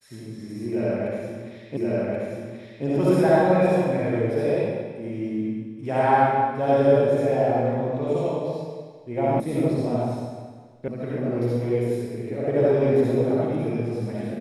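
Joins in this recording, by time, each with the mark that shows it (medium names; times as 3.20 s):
1.77 s: repeat of the last 1.08 s
9.40 s: sound stops dead
10.88 s: sound stops dead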